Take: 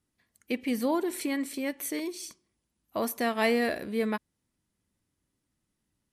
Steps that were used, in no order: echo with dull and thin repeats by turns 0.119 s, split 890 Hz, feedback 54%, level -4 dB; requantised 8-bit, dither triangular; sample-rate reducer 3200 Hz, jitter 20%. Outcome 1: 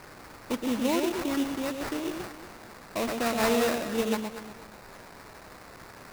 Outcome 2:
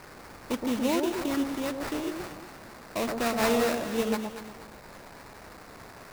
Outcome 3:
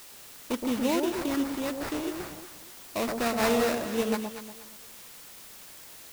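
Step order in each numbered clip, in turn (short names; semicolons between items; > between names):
requantised > echo with dull and thin repeats by turns > sample-rate reducer; requantised > sample-rate reducer > echo with dull and thin repeats by turns; sample-rate reducer > requantised > echo with dull and thin repeats by turns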